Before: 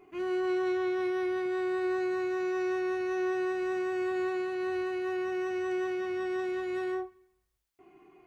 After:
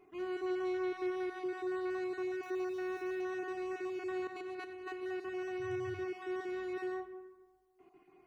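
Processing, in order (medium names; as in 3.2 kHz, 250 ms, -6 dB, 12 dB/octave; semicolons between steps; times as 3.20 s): random holes in the spectrogram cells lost 21%; 4.27–5.03 s: compressor with a negative ratio -36 dBFS, ratio -0.5; algorithmic reverb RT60 1.6 s, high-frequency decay 0.35×, pre-delay 15 ms, DRR 9.5 dB; 2.43–3.22 s: small samples zeroed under -51.5 dBFS; 5.59–6.03 s: band noise 85–130 Hz -45 dBFS; trim -6 dB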